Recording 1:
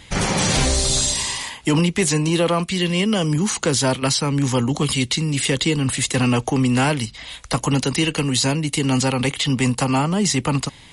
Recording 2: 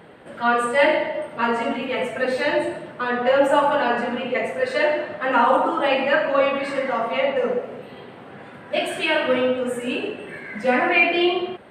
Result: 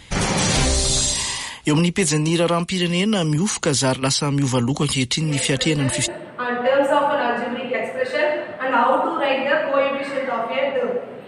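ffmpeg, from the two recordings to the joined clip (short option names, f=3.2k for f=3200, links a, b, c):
-filter_complex "[1:a]asplit=2[a][b];[0:a]apad=whole_dur=11.27,atrim=end=11.27,atrim=end=6.082[c];[b]atrim=start=2.688:end=7.88[d];[a]atrim=start=1.84:end=2.69,asetpts=PTS-STARTPTS,volume=-9dB,afade=t=in:d=0.004:c=hsin,afade=t=out:st=0.846:d=0.004:c=hsin,adelay=5230[e];[c][d]acrossfade=d=0.004:c1=hsin:c2=hsin[f];[f][e]amix=inputs=2:normalize=0"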